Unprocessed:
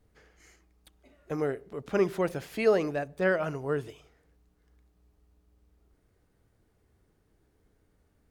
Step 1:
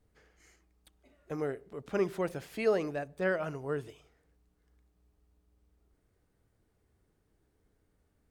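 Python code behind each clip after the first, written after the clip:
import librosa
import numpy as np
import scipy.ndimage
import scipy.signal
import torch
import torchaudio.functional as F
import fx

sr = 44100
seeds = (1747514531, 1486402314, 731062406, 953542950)

y = fx.peak_eq(x, sr, hz=8300.0, db=3.0, octaves=0.2)
y = y * 10.0 ** (-4.5 / 20.0)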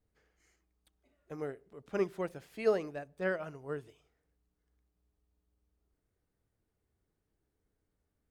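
y = fx.upward_expand(x, sr, threshold_db=-40.0, expansion=1.5)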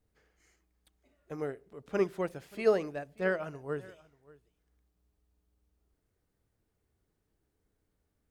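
y = x + 10.0 ** (-22.0 / 20.0) * np.pad(x, (int(582 * sr / 1000.0), 0))[:len(x)]
y = y * 10.0 ** (3.0 / 20.0)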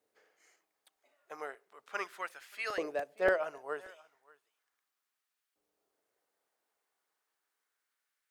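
y = fx.filter_lfo_highpass(x, sr, shape='saw_up', hz=0.36, low_hz=450.0, high_hz=1700.0, q=1.3)
y = fx.buffer_crackle(y, sr, first_s=0.38, period_s=0.29, block=128, kind='repeat')
y = y * 10.0 ** (1.5 / 20.0)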